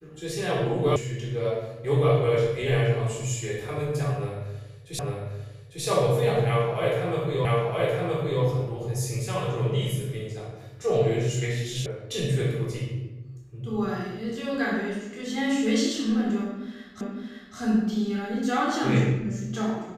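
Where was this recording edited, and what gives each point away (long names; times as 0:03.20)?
0:00.96: cut off before it has died away
0:04.99: the same again, the last 0.85 s
0:07.45: the same again, the last 0.97 s
0:11.86: cut off before it has died away
0:17.01: the same again, the last 0.56 s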